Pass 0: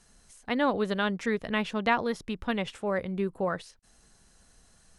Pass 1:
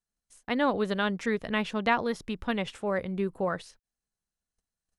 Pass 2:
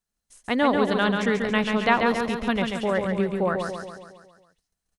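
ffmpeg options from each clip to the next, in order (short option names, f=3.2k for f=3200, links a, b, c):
-af "agate=range=-31dB:threshold=-53dB:ratio=16:detection=peak"
-af "aecho=1:1:138|276|414|552|690|828|966:0.562|0.309|0.17|0.0936|0.0515|0.0283|0.0156,volume=4.5dB"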